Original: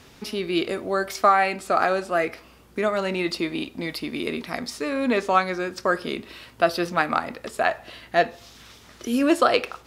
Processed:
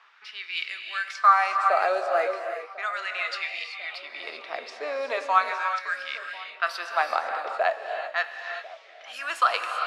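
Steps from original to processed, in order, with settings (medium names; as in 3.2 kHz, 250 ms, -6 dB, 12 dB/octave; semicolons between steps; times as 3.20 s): level-controlled noise filter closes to 2.6 kHz, open at -16.5 dBFS; frequency weighting A; LFO high-pass sine 0.37 Hz 510–2100 Hz; feedback echo behind a low-pass 1046 ms, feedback 50%, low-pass 980 Hz, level -18 dB; gated-style reverb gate 410 ms rising, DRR 5 dB; trim -6 dB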